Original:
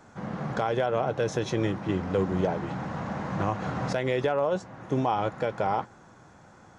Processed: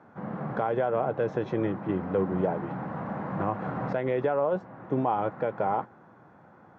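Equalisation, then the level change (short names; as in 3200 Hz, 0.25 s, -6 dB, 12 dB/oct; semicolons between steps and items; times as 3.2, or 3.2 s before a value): HPF 130 Hz 12 dB/oct; LPF 1600 Hz 12 dB/oct; 0.0 dB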